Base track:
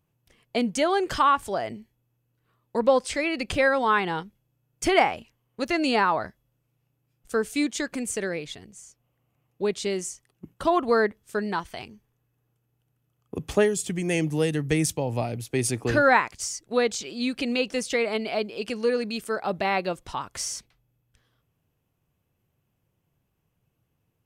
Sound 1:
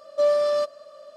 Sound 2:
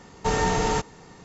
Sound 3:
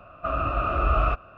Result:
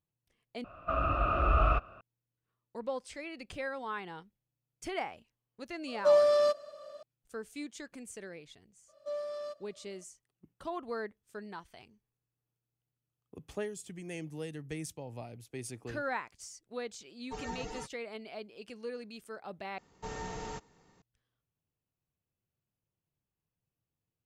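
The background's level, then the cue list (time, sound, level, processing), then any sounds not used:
base track −16.5 dB
0:00.64: overwrite with 3 −4 dB
0:05.87: mix in 1 −3 dB
0:08.88: mix in 1 −17.5 dB
0:17.06: mix in 2 −13 dB + spectral dynamics exaggerated over time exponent 3
0:19.78: overwrite with 2 −17.5 dB

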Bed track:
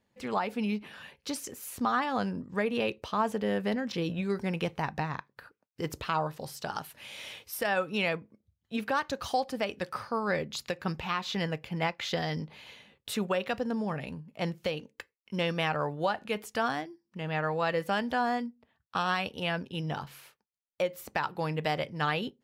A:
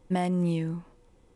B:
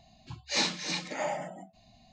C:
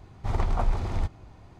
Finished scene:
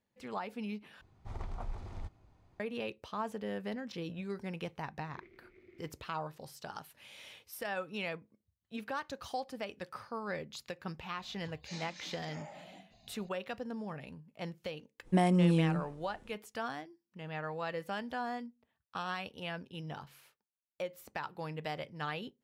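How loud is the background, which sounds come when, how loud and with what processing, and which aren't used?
bed track −9 dB
0:01.01: overwrite with C −15.5 dB
0:04.83: mix in C −13.5 dB + pair of resonant band-passes 880 Hz, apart 2.6 octaves
0:11.17: mix in B −4 dB + downward compressor 2.5 to 1, threshold −48 dBFS
0:15.02: mix in A, fades 0.05 s

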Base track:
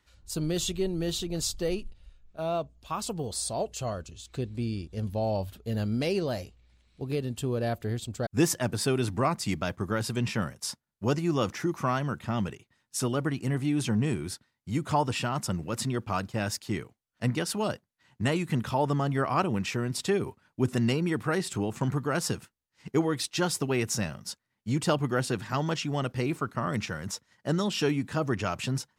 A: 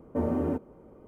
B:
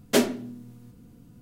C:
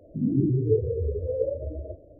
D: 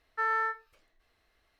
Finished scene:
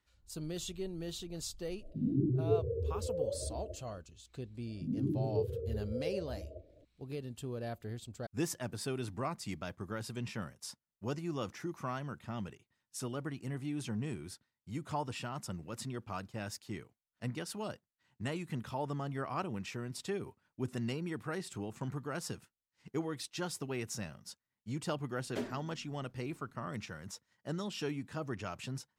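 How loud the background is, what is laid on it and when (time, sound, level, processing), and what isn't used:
base track −11 dB
0:01.80: mix in C −8 dB
0:04.66: mix in C −11 dB
0:25.22: mix in B −17 dB + low-pass filter 2,100 Hz 6 dB per octave
not used: A, D

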